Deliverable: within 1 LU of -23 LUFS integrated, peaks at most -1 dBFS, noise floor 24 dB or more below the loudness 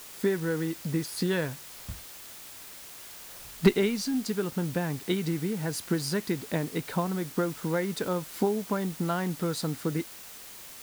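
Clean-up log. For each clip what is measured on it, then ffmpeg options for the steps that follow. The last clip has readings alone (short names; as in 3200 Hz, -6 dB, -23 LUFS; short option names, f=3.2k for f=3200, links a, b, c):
noise floor -46 dBFS; noise floor target -54 dBFS; loudness -30.0 LUFS; peak -10.0 dBFS; loudness target -23.0 LUFS
-> -af "afftdn=nr=8:nf=-46"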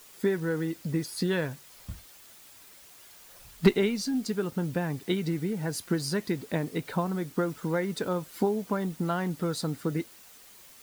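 noise floor -53 dBFS; noise floor target -54 dBFS
-> -af "afftdn=nr=6:nf=-53"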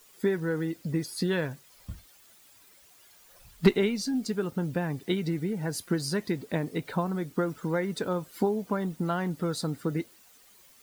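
noise floor -58 dBFS; loudness -30.0 LUFS; peak -10.0 dBFS; loudness target -23.0 LUFS
-> -af "volume=7dB"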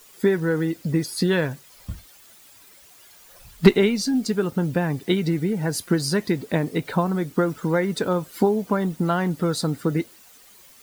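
loudness -23.0 LUFS; peak -3.0 dBFS; noise floor -51 dBFS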